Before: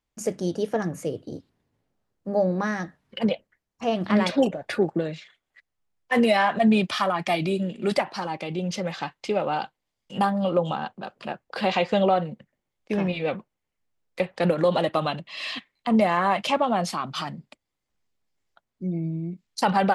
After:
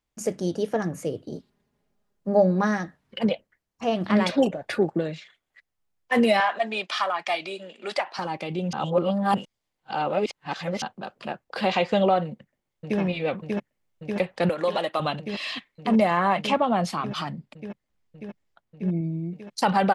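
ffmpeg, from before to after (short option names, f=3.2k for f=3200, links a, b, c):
-filter_complex "[0:a]asettb=1/sr,asplit=3[a][b][c];[a]atrim=end=1.304[d];[b]atrim=start=1.3:end=2.78,asetpts=PTS-STARTPTS,afade=t=in:d=0.004:c=qsin,afade=t=out:st=1.476:d=0.004:c=qsin,aecho=1:1:4.9:0.62,atrim=end_sample=65268[e];[c]atrim=start=2.776[f];[d][e]acrossfade=d=0.004:c1=hsin:c2=qsin[g];[g][f]acrossfade=d=0.004:c1=qsin:c2=hsin,asettb=1/sr,asplit=3[h][i][j];[h]atrim=end=6.404[k];[i]atrim=start=6.4:end=8.19,asetpts=PTS-STARTPTS,afade=t=in:d=0.004:c=qsin,afade=t=out:st=1.786:d=0.004:c=qsin,highpass=640,lowpass=7.4k[l];[j]atrim=start=8.186[m];[k][l]acrossfade=d=0.004:c1=hsin:c2=qsin[n];[n][m]acrossfade=d=0.004:c1=qsin:c2=hsin,asplit=2[o][p];[p]afade=t=in:st=12.24:d=0.01,afade=t=out:st=13:d=0.01,aecho=0:1:590|1180|1770|2360|2950|3540|4130|4720|5310|5900|6490|7080:0.749894|0.63741|0.541799|0.460529|0.391449|0.332732|0.282822|0.240399|0.204339|0.173688|0.147635|0.12549[q];[o][q]amix=inputs=2:normalize=0,asettb=1/sr,asplit=3[r][s][t];[r]atrim=end=14.494[u];[s]atrim=start=14.49:end=15,asetpts=PTS-STARTPTS,afade=t=in:d=0.004:c=qsin,afade=t=out:st=0.506:d=0.004:c=qsin,highpass=f=630:p=1[v];[t]atrim=start=14.996[w];[u][v]acrossfade=d=0.004:c1=hsin:c2=qsin[x];[x][w]acrossfade=d=0.004:c1=qsin:c2=hsin,asettb=1/sr,asplit=3[y][z][aa];[y]atrim=end=16.114[ab];[z]atrim=start=16.11:end=19.01,asetpts=PTS-STARTPTS,afade=t=in:d=0.004:c=qsin,afade=t=out:st=2.896:d=0.004:c=qsin,bass=f=250:g=3,treble=f=4k:g=-4[ac];[aa]atrim=start=19.006[ad];[ab][ac]acrossfade=d=0.004:c1=hsin:c2=qsin[ae];[ae][ad]acrossfade=d=0.004:c1=qsin:c2=hsin,asplit=3[af][ag][ah];[af]atrim=end=8.732[ai];[ag]atrim=start=8.728:end=10.822,asetpts=PTS-STARTPTS,areverse[aj];[ah]atrim=start=10.818[ak];[ai][aj]acrossfade=d=0.004:c1=hsin:c2=hsin[al];[al][ak]acrossfade=d=0.004:c1=hsin:c2=hsin"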